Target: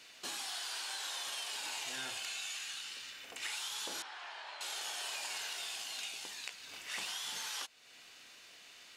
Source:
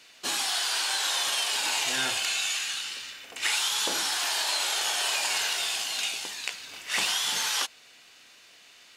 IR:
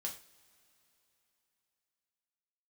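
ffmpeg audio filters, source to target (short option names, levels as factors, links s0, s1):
-filter_complex "[0:a]acompressor=threshold=0.00562:ratio=2,asettb=1/sr,asplit=3[s0][s1][s2];[s0]atrim=end=4.024[s3];[s1]atrim=start=4.02:end=4.61,asetpts=PTS-STARTPTS,afade=t=in:d=0.004:c=qsin,afade=t=out:st=0.586:d=0.004:c=qsin,highpass=510,lowpass=2200[s4];[s2]atrim=start=4.606[s5];[s3][s4]acrossfade=d=0.004:c1=hsin:c2=qsin[s6];[s6][s5]acrossfade=d=0.004:c1=qsin:c2=hsin,volume=0.75"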